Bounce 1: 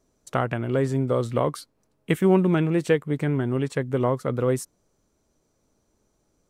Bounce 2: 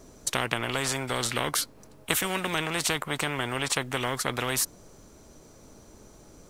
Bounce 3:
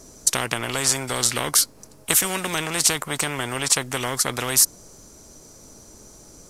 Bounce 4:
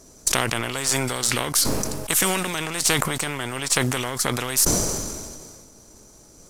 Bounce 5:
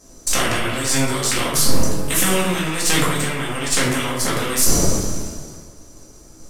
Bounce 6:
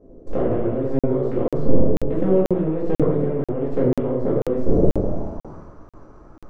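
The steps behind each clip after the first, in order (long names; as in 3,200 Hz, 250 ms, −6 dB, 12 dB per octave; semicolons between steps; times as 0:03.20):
every bin compressed towards the loudest bin 4 to 1; level +2 dB
flat-topped bell 7,700 Hz +9 dB; level +2.5 dB
gain on one half-wave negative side −3 dB; level that may fall only so fast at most 30 dB per second; level −2 dB
rectangular room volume 210 cubic metres, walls mixed, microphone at 2.1 metres; level −3.5 dB
low-pass filter sweep 470 Hz → 1,200 Hz, 0:04.84–0:05.66; regular buffer underruns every 0.49 s, samples 2,048, zero, from 0:00.99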